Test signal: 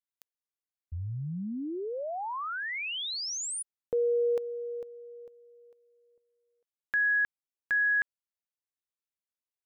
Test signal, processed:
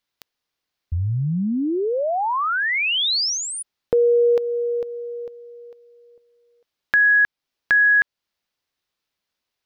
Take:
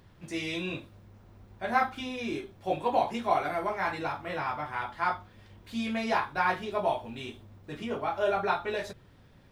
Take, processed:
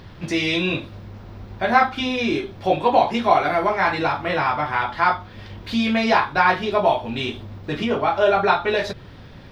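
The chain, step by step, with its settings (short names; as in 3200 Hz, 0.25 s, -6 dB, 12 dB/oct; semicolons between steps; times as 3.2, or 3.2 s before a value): resonant high shelf 6200 Hz -8 dB, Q 1.5; in parallel at +3 dB: compressor, threshold -39 dBFS; on the sum: gain +8 dB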